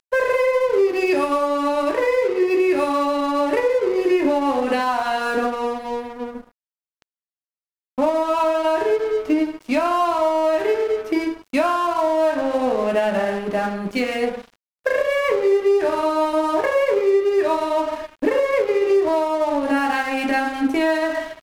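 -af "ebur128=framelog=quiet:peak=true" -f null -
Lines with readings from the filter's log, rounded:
Integrated loudness:
  I:         -20.1 LUFS
  Threshold: -30.4 LUFS
Loudness range:
  LRA:         4.5 LU
  Threshold: -40.6 LUFS
  LRA low:   -23.7 LUFS
  LRA high:  -19.2 LUFS
True peak:
  Peak:       -7.1 dBFS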